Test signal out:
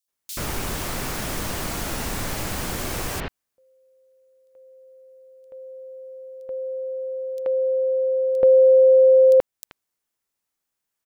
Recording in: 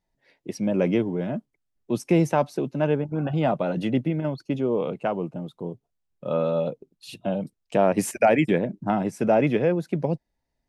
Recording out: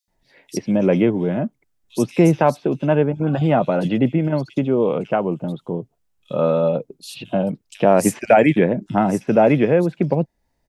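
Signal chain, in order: bands offset in time highs, lows 80 ms, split 3500 Hz; in parallel at -3 dB: compressor, threshold -35 dBFS; on the sum: gain +5 dB

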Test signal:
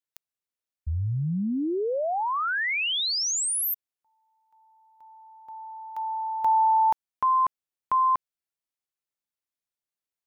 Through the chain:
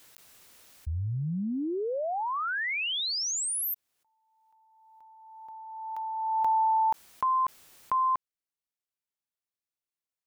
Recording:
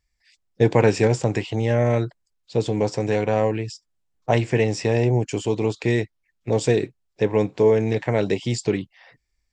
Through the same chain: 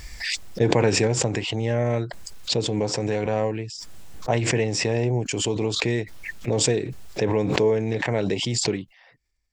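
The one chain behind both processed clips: backwards sustainer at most 30 dB/s; gain -4 dB

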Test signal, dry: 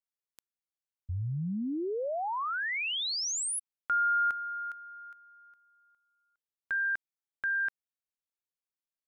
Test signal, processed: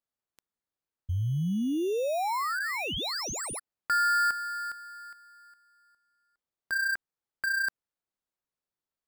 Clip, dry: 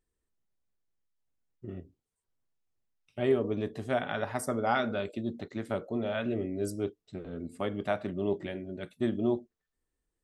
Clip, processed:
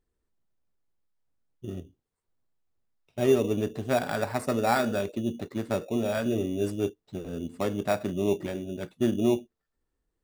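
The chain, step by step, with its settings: high shelf 5800 Hz -6.5 dB; in parallel at -3 dB: sample-and-hold 14×

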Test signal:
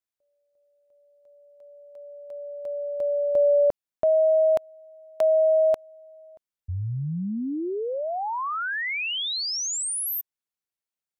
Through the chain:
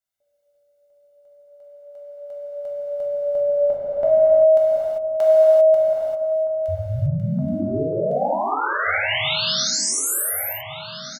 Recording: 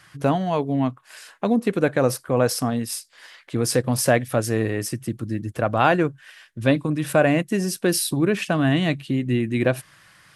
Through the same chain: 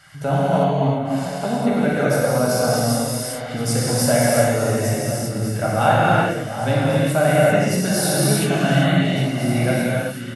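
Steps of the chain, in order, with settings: notch 2400 Hz, Q 16; comb 1.4 ms, depth 49%; in parallel at +1.5 dB: compressor, threshold -32 dBFS; on the sum: echo with dull and thin repeats by turns 0.728 s, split 1400 Hz, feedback 69%, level -10.5 dB; non-linear reverb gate 0.42 s flat, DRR -8 dB; gain -7.5 dB

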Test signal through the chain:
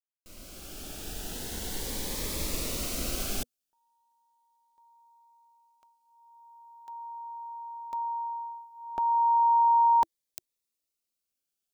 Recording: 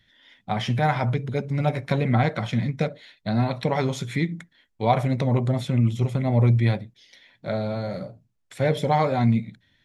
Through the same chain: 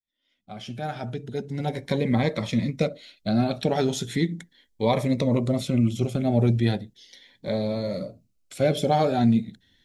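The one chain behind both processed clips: opening faded in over 2.40 s; graphic EQ 125/1000/2000 Hz -10/-6/-5 dB; cascading phaser rising 0.37 Hz; gain +5.5 dB

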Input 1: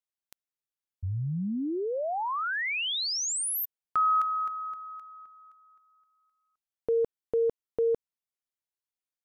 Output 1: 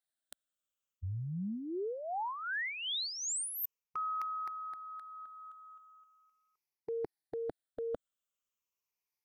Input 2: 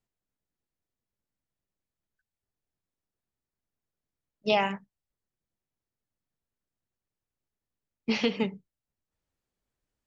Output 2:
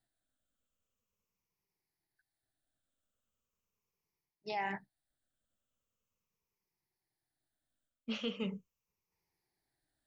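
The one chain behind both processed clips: moving spectral ripple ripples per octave 0.8, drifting -0.4 Hz, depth 13 dB; low shelf 400 Hz -3.5 dB; reverse; compressor 4:1, threshold -37 dBFS; reverse

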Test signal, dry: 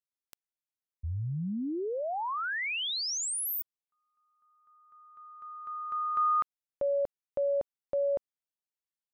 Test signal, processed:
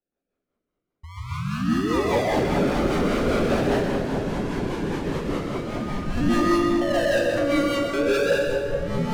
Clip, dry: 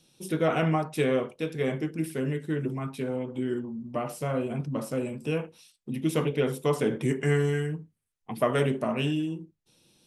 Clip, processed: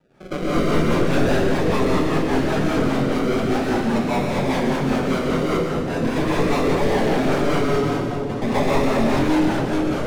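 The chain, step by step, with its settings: one-sided fold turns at -25.5 dBFS; decimation with a swept rate 40×, swing 60% 0.43 Hz; bell 95 Hz -8 dB 1.1 oct; plate-style reverb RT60 1.4 s, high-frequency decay 0.75×, pre-delay 0.115 s, DRR -8 dB; echoes that change speed 91 ms, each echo -6 st, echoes 3, each echo -6 dB; rotary speaker horn 5 Hz; split-band echo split 1000 Hz, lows 0.438 s, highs 0.122 s, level -9.5 dB; overdrive pedal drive 18 dB, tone 5600 Hz, clips at -8 dBFS; tilt -2.5 dB/oct; gain -4 dB

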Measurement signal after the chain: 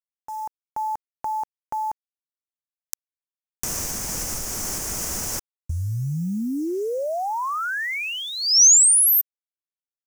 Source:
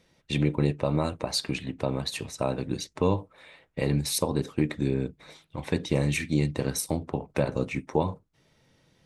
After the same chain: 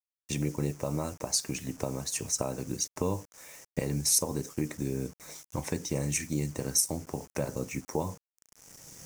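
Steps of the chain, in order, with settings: recorder AGC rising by 17 dB/s; bit-crush 8-bit; resonant high shelf 4800 Hz +8 dB, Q 3; gain -6.5 dB

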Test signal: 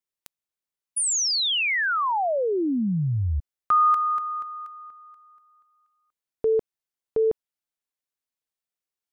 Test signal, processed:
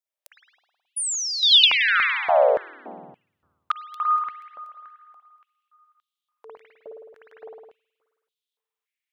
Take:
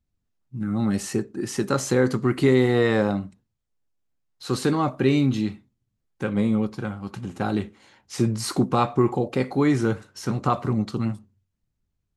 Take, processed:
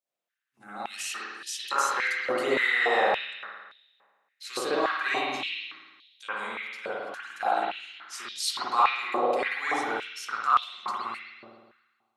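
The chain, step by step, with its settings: high shelf 2600 Hz +10.5 dB; spring tank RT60 1.4 s, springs 53 ms, chirp 80 ms, DRR -9.5 dB; stepped high-pass 3.5 Hz 590–3500 Hz; gain -12.5 dB

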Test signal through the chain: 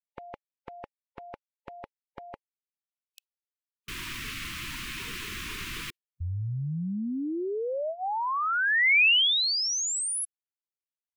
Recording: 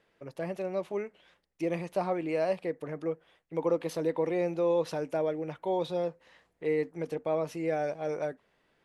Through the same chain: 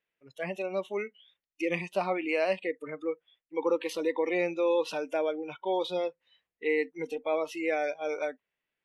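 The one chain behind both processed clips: spectral noise reduction 22 dB; bell 2500 Hz +11.5 dB 1.3 oct

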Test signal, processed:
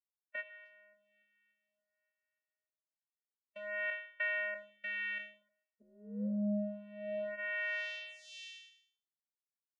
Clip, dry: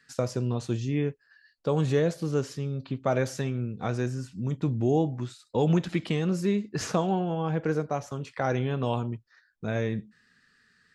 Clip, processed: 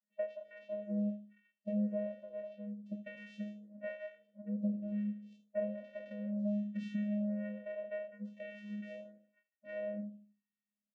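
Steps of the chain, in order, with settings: spectral trails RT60 0.54 s; spectral noise reduction 24 dB; bell 150 Hz +15 dB 0.55 oct; compressor 3:1, threshold -26 dBFS; vocoder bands 4, square 207 Hz; vowel filter e; on a send: feedback echo 77 ms, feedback 43%, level -15 dB; on the sum: photocell phaser 0.55 Hz; gain +14.5 dB

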